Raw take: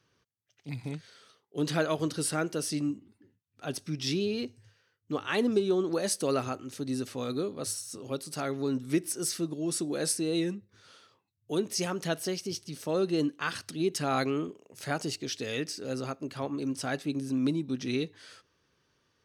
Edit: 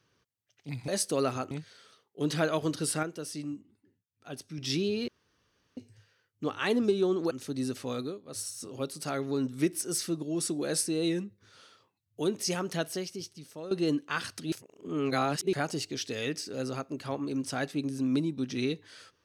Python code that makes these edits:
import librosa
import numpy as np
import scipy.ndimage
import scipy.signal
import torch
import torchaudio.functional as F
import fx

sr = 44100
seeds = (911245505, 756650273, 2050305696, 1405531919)

y = fx.edit(x, sr, fx.clip_gain(start_s=2.4, length_s=1.55, db=-6.5),
    fx.insert_room_tone(at_s=4.45, length_s=0.69),
    fx.move(start_s=5.99, length_s=0.63, to_s=0.88),
    fx.fade_down_up(start_s=7.26, length_s=0.54, db=-17.0, fade_s=0.27),
    fx.fade_out_to(start_s=11.99, length_s=1.03, floor_db=-14.0),
    fx.reverse_span(start_s=13.83, length_s=1.01), tone=tone)